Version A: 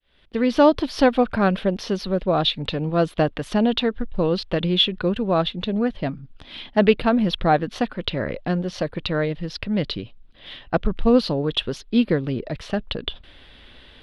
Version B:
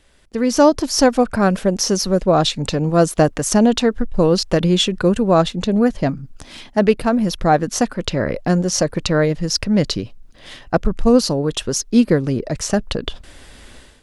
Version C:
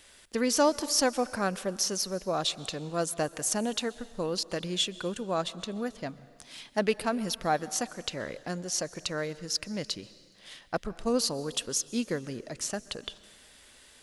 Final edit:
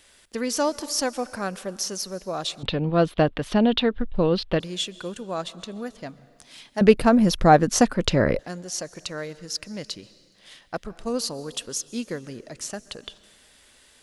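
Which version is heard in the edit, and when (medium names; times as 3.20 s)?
C
2.63–4.60 s: from A
6.81–8.39 s: from B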